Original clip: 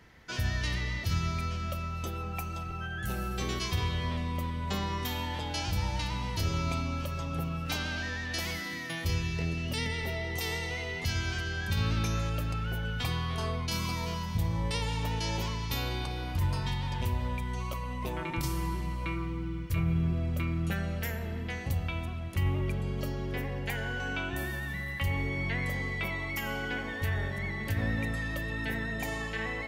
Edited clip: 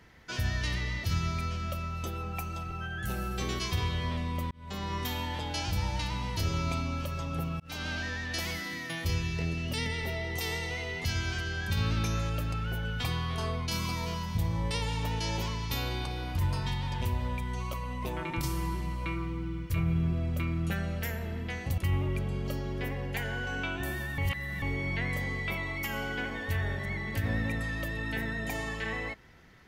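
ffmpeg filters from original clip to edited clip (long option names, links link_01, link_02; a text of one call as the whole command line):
ffmpeg -i in.wav -filter_complex "[0:a]asplit=6[link_01][link_02][link_03][link_04][link_05][link_06];[link_01]atrim=end=4.51,asetpts=PTS-STARTPTS,afade=type=out:start_time=4.506:duration=0.004:curve=hsin[link_07];[link_02]atrim=start=4.51:end=7.6,asetpts=PTS-STARTPTS,afade=type=in:duration=0.45,afade=type=out:start_time=3.086:duration=0.004:curve=hsin[link_08];[link_03]atrim=start=7.6:end=21.782,asetpts=PTS-STARTPTS,afade=type=in:duration=0.29[link_09];[link_04]atrim=start=22.308:end=24.712[link_10];[link_05]atrim=start=24.708:end=25.152,asetpts=PTS-STARTPTS,areverse[link_11];[link_06]atrim=start=25.148[link_12];[link_07][link_08][link_09]concat=n=3:v=0:a=1[link_13];[link_13][link_10]acrossfade=duration=0.004:curve1=hsin:curve2=hsin[link_14];[link_14][link_11]acrossfade=duration=0.004:curve1=hsin:curve2=hsin[link_15];[link_15][link_12]acrossfade=duration=0.004:curve1=hsin:curve2=hsin" out.wav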